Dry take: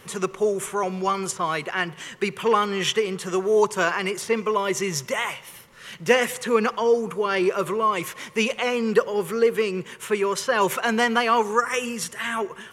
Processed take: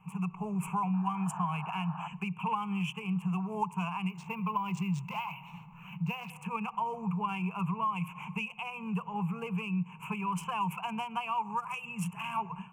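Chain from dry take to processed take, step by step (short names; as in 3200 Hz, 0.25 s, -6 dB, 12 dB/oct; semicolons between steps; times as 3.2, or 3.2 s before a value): Wiener smoothing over 9 samples; AGC gain up to 13 dB; dynamic EQ 3300 Hz, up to +6 dB, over -39 dBFS, Q 2.8; 0.93–2.08 painted sound noise 590–1900 Hz -26 dBFS; EQ curve 110 Hz 0 dB, 180 Hz +15 dB, 330 Hz -26 dB, 910 Hz +6 dB, 1500 Hz -8 dB, 2600 Hz +14 dB, 3700 Hz -28 dB, 7800 Hz -5 dB; compressor 6:1, threshold -20 dBFS, peak gain reduction 17.5 dB; fixed phaser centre 380 Hz, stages 8; 4.09–6.3 decimation joined by straight lines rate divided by 3×; gain -8 dB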